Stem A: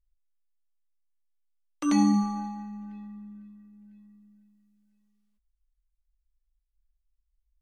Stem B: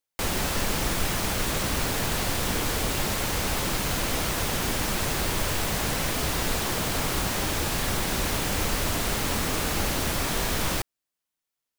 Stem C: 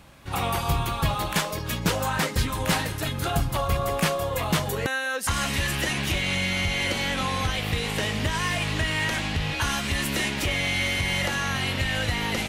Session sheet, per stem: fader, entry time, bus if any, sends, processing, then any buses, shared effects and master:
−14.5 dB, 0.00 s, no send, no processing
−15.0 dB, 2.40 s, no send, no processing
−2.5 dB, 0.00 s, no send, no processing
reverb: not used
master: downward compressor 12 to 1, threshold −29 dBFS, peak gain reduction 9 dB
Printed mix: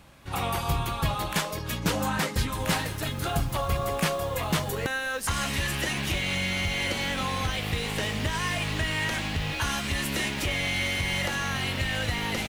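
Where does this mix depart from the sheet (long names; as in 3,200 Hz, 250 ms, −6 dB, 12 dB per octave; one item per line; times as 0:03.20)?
stem B −15.0 dB → −22.0 dB
master: missing downward compressor 12 to 1, threshold −29 dBFS, peak gain reduction 9 dB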